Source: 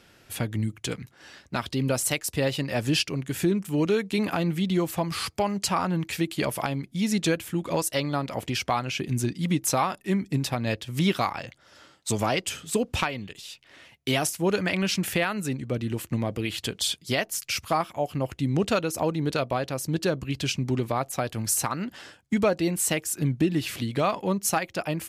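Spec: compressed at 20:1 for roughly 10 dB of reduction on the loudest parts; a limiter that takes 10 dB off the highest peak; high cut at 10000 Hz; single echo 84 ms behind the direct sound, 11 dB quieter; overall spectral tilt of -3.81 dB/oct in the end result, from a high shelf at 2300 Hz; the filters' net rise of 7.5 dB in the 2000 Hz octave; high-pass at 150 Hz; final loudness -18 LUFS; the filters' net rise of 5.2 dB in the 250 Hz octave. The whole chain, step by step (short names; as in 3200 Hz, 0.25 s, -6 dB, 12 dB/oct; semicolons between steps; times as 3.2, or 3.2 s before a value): HPF 150 Hz; LPF 10000 Hz; bell 250 Hz +8 dB; bell 2000 Hz +6.5 dB; high shelf 2300 Hz +5 dB; compressor 20:1, threshold -24 dBFS; limiter -20 dBFS; echo 84 ms -11 dB; gain +13 dB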